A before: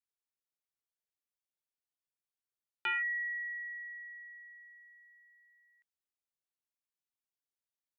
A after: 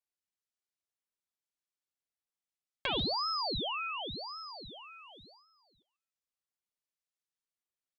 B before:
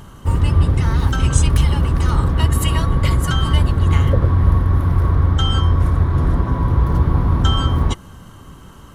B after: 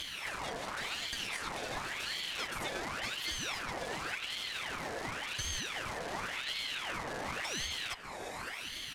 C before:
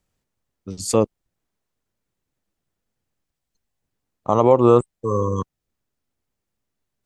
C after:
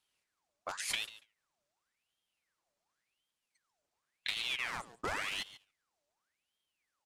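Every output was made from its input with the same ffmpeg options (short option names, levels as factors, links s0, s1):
-filter_complex "[0:a]acrossover=split=320|2900[s0][s1][s2];[s0]acompressor=threshold=0.0794:ratio=4[s3];[s1]acompressor=threshold=0.0447:ratio=4[s4];[s2]acompressor=threshold=0.00631:ratio=4[s5];[s3][s4][s5]amix=inputs=3:normalize=0,asplit=2[s6][s7];[s7]aeval=exprs='(mod(11.2*val(0)+1,2)-1)/11.2':c=same,volume=0.355[s8];[s6][s8]amix=inputs=2:normalize=0,acompressor=threshold=0.0126:ratio=4,lowpass=7400,highshelf=f=4100:g=8,aecho=1:1:7.3:0.47,asplit=2[s9][s10];[s10]aecho=0:1:142|284:0.158|0.0254[s11];[s9][s11]amix=inputs=2:normalize=0,agate=range=0.316:threshold=0.00112:ratio=16:detection=peak,lowshelf=f=210:g=-8.5,aeval=exprs='val(0)*sin(2*PI*1900*n/s+1900*0.7/0.91*sin(2*PI*0.91*n/s))':c=same,volume=1.78"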